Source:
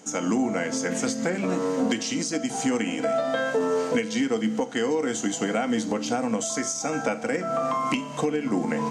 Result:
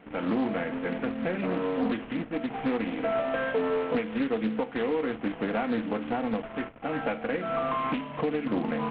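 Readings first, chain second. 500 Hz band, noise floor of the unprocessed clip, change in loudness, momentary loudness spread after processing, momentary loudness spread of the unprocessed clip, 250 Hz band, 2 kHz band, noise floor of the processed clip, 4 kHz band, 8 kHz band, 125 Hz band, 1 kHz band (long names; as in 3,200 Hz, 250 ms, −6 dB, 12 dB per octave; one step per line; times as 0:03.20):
−3.0 dB, −34 dBFS, −4.0 dB, 4 LU, 2 LU, −3.5 dB, −3.5 dB, −43 dBFS, −9.5 dB, below −40 dB, −3.0 dB, −3.0 dB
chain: variable-slope delta modulation 16 kbit/s
highs frequency-modulated by the lows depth 0.29 ms
level −2.5 dB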